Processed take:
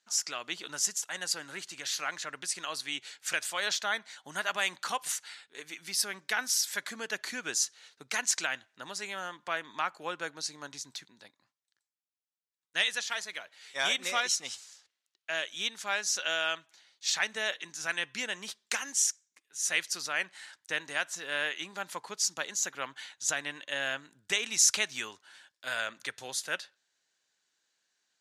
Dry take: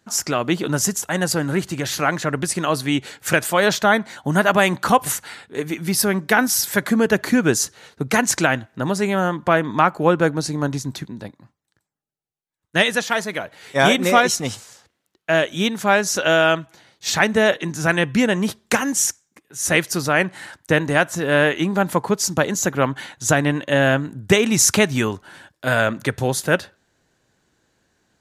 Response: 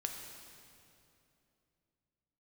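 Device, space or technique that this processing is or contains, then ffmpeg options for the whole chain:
piezo pickup straight into a mixer: -af "lowpass=5.2k,aderivative"

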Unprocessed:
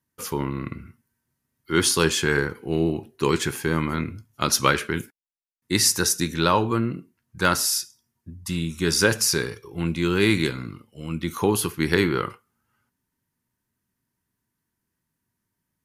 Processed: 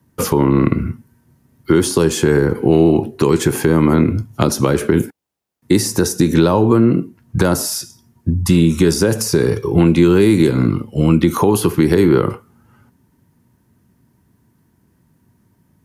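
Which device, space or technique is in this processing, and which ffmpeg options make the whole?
mastering chain: -filter_complex "[0:a]highpass=59,equalizer=f=800:t=o:w=0.77:g=3,acrossover=split=270|750|6400[a][b][c][d];[a]acompressor=threshold=-39dB:ratio=4[e];[b]acompressor=threshold=-30dB:ratio=4[f];[c]acompressor=threshold=-35dB:ratio=4[g];[d]acompressor=threshold=-30dB:ratio=4[h];[e][f][g][h]amix=inputs=4:normalize=0,acompressor=threshold=-32dB:ratio=2.5,tiltshelf=f=710:g=7.5,alimiter=level_in=20dB:limit=-1dB:release=50:level=0:latency=1,volume=-1dB"

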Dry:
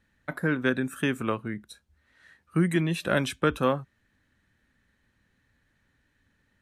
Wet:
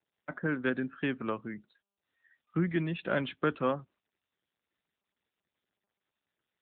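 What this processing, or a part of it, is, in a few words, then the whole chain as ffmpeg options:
mobile call with aggressive noise cancelling: -af "highpass=140,afftdn=nr=26:nf=-46,volume=-4.5dB" -ar 8000 -c:a libopencore_amrnb -b:a 10200

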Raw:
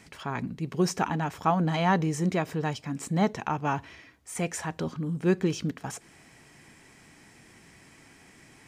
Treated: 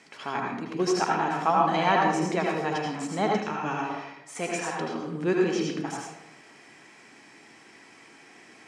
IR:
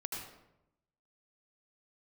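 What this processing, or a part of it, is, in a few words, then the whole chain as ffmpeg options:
supermarket ceiling speaker: -filter_complex "[0:a]highpass=300,lowpass=6.9k[a];[1:a]atrim=start_sample=2205[b];[a][b]afir=irnorm=-1:irlink=0,asettb=1/sr,asplit=3[c][d][e];[c]atrim=end=3.364[f];[d]atrim=start=3.36:end=3.9,asetpts=PTS-STARTPTS,afade=t=in:d=0.004:c=qsin,afade=t=out:st=0.536:d=0.004:c=qsin,equalizer=f=780:w=0.82:g=-7[g];[e]atrim=start=3.896[h];[f][g]acrossfade=d=0.004:c1=hsin:c2=qsin[i];[i][h]acrossfade=d=0.004:c1=qsin:c2=hsin,volume=4dB"

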